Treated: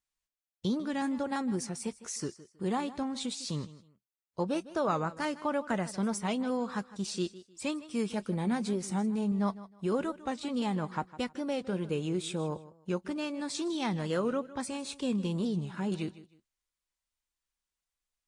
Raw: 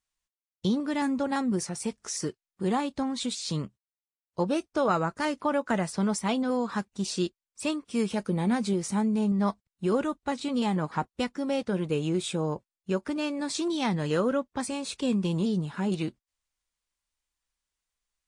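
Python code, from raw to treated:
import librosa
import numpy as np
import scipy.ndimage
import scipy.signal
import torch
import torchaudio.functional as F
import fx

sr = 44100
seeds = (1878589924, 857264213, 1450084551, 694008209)

p1 = x + fx.echo_feedback(x, sr, ms=156, feedback_pct=25, wet_db=-17, dry=0)
p2 = fx.record_warp(p1, sr, rpm=45.0, depth_cents=100.0)
y = p2 * librosa.db_to_amplitude(-4.5)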